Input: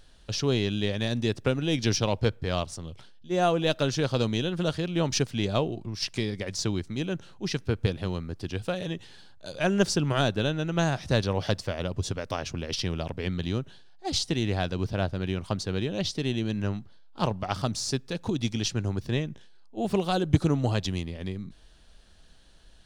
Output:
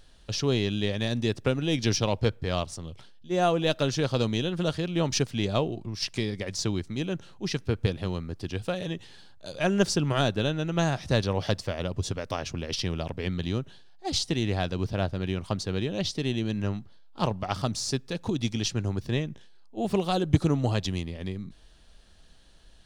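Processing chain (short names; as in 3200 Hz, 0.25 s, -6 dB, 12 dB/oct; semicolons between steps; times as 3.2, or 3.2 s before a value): notch 1500 Hz, Q 26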